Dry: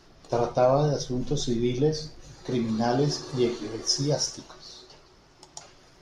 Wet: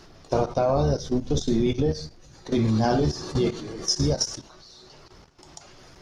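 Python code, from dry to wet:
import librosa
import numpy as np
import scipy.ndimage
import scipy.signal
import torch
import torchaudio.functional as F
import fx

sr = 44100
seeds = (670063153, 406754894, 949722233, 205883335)

y = fx.octave_divider(x, sr, octaves=1, level_db=-4.0)
y = fx.level_steps(y, sr, step_db=14)
y = fx.end_taper(y, sr, db_per_s=300.0)
y = F.gain(torch.from_numpy(y), 7.0).numpy()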